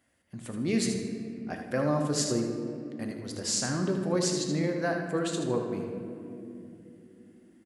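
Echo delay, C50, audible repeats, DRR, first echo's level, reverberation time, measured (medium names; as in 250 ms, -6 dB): 78 ms, 3.5 dB, 1, 2.0 dB, -8.0 dB, 3.0 s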